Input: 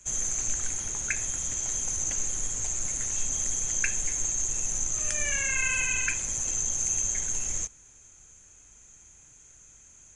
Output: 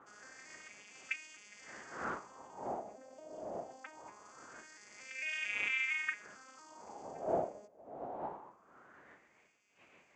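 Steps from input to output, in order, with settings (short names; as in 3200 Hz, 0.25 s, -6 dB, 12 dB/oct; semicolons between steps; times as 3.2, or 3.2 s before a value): arpeggiated vocoder major triad, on G#3, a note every 0.227 s; wind noise 380 Hz -26 dBFS; wah 0.23 Hz 630–2500 Hz, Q 4.6; gain -5 dB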